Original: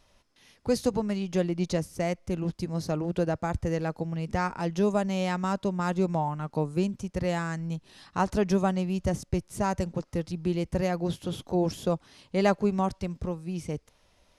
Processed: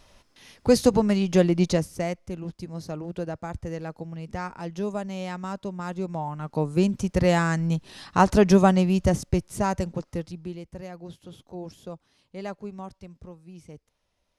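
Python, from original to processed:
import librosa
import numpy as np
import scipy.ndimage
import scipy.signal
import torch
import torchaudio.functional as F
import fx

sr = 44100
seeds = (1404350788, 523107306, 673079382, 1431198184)

y = fx.gain(x, sr, db=fx.line((1.59, 7.5), (2.38, -4.5), (6.09, -4.5), (7.0, 8.0), (8.79, 8.0), (10.18, -0.5), (10.67, -11.5)))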